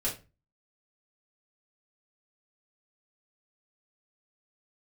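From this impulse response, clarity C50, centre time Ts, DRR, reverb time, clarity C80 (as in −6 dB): 10.0 dB, 22 ms, −6.5 dB, 0.30 s, 16.5 dB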